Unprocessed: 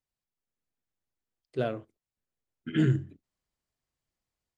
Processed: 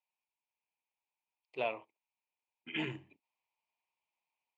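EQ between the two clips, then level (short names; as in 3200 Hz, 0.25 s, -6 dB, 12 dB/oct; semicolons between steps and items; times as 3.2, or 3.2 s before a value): dynamic EQ 1600 Hz, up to +5 dB, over -50 dBFS, Q 1.3; double band-pass 1500 Hz, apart 1.4 oct; +10.5 dB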